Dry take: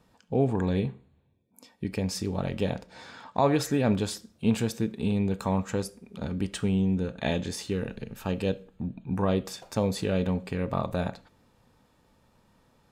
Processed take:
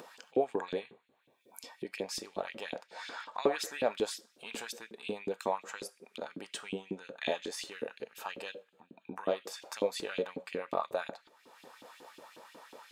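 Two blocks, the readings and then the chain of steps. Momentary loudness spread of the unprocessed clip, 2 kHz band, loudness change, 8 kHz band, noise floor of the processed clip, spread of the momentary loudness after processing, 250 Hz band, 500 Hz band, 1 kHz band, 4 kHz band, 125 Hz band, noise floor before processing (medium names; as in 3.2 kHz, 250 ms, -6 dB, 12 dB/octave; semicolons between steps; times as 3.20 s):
10 LU, -2.5 dB, -8.5 dB, -5.0 dB, -70 dBFS, 20 LU, -16.0 dB, -5.0 dB, -4.5 dB, -3.0 dB, -25.5 dB, -65 dBFS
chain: upward compressor, threshold -31 dBFS; LFO high-pass saw up 5.5 Hz 300–3400 Hz; trim -5.5 dB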